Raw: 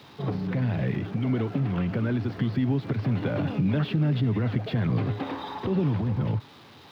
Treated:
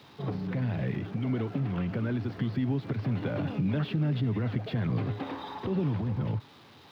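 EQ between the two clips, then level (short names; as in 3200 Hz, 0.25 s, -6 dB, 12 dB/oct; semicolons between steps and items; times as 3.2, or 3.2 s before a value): none; -4.0 dB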